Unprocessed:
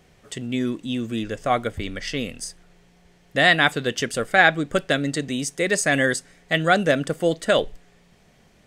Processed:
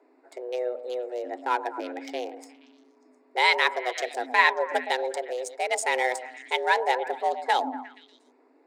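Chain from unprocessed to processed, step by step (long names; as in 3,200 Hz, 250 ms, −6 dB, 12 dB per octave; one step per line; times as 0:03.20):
adaptive Wiener filter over 15 samples
flanger 1.4 Hz, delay 0.3 ms, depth 3.3 ms, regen +83%
frequency shifter +250 Hz
echo through a band-pass that steps 118 ms, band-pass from 680 Hz, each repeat 0.7 octaves, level −10 dB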